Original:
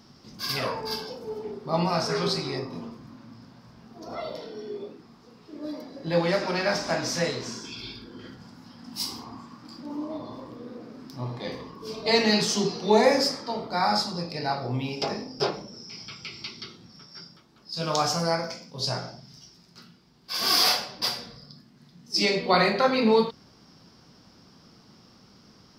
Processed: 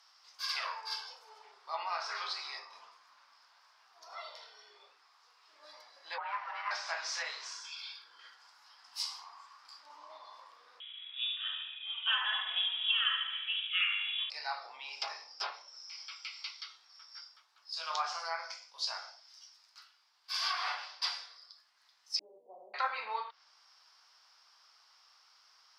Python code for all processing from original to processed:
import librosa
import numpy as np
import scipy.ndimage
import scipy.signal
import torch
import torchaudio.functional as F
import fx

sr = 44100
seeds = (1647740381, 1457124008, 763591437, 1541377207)

y = fx.chain(x, sr, fx.lowpass(hz=1800.0, slope=12),
    fx.ring_mod(carrier_hz=420.0), at=(6.18, 6.71))
y = fx.chain(y, sr, fx.echo_feedback(ms=71, feedback_pct=57, wet_db=-8.0),
    fx.freq_invert(carrier_hz=3600), at=(10.8, 14.3))
y = fx.chain(y, sr, fx.leveller(passes=2),
    fx.gaussian_blur(sigma=21.0), at=(22.19, 22.74))
y = fx.env_lowpass_down(y, sr, base_hz=1900.0, full_db=-18.5)
y = scipy.signal.sosfilt(scipy.signal.butter(4, 930.0, 'highpass', fs=sr, output='sos'), y)
y = fx.high_shelf(y, sr, hz=12000.0, db=-5.0)
y = y * 10.0 ** (-4.5 / 20.0)